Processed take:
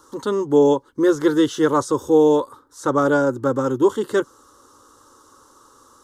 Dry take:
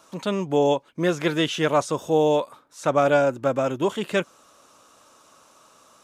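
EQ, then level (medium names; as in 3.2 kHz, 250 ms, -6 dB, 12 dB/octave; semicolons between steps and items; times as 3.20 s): bass shelf 340 Hz +10.5 dB; static phaser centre 660 Hz, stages 6; +3.5 dB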